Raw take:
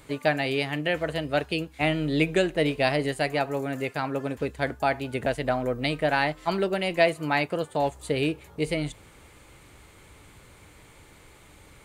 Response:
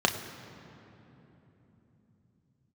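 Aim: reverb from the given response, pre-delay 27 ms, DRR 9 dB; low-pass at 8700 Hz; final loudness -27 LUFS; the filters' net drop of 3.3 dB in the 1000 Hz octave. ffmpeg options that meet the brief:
-filter_complex "[0:a]lowpass=8.7k,equalizer=f=1k:t=o:g=-5,asplit=2[a][b];[1:a]atrim=start_sample=2205,adelay=27[c];[b][c]afir=irnorm=-1:irlink=0,volume=-22dB[d];[a][d]amix=inputs=2:normalize=0"

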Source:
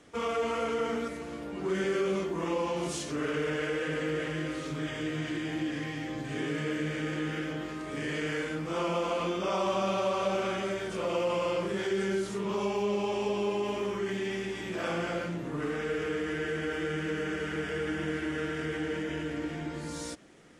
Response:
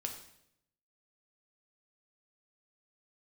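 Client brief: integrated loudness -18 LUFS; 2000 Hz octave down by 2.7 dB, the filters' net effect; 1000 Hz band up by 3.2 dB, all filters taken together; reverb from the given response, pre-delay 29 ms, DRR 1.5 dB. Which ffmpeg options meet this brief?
-filter_complex "[0:a]equalizer=f=1k:t=o:g=5.5,equalizer=f=2k:t=o:g=-5.5,asplit=2[a][b];[1:a]atrim=start_sample=2205,adelay=29[c];[b][c]afir=irnorm=-1:irlink=0,volume=-1dB[d];[a][d]amix=inputs=2:normalize=0,volume=11.5dB"

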